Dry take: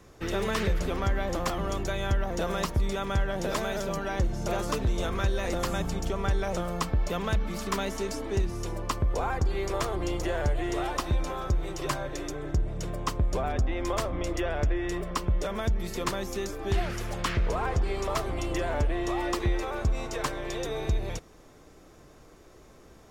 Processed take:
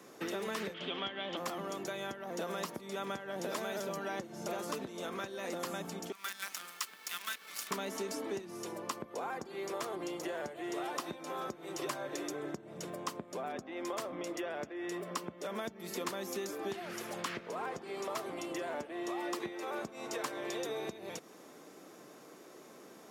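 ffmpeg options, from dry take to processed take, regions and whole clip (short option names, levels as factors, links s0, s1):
-filter_complex "[0:a]asettb=1/sr,asplit=3[s0][s1][s2];[s0]atrim=end=0.744[s3];[s1]atrim=start=0.74:end=1.37,asetpts=PTS-STARTPTS,afade=t=in:d=0.004:c=qsin,afade=t=out:st=0.626:d=0.004:c=qsin,lowpass=f=3200:t=q:w=8.7,bandreject=f=500:w=15[s4];[s2]atrim=start=1.366[s5];[s3][s4]acrossfade=d=0.004:c1=hsin:c2=qsin[s6];[s6][s5]acrossfade=d=0.004:c1=qsin:c2=hsin,asettb=1/sr,asplit=3[s7][s8][s9];[s7]atrim=end=6.124[s10];[s8]atrim=start=6.12:end=7.71,asetpts=PTS-STARTPTS,afade=t=in:d=0.004:c=qsin,afade=t=out:st=1.586:d=0.004:c=qsin,highpass=f=1400:w=0.5412,highpass=f=1400:w=1.3066,acrusher=bits=7:dc=4:mix=0:aa=0.000001[s11];[s9]atrim=start=7.706[s12];[s10][s11]acrossfade=d=0.004:c1=hsin:c2=qsin[s13];[s13][s12]acrossfade=d=0.004:c1=qsin:c2=hsin,equalizer=f=12000:t=o:w=0.55:g=5.5,acompressor=threshold=0.0178:ratio=6,highpass=f=190:w=0.5412,highpass=f=190:w=1.3066,volume=1.12"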